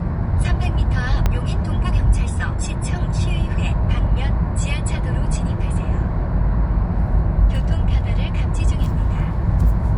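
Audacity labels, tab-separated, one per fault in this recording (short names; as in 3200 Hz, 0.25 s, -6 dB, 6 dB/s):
1.260000	1.260000	pop -6 dBFS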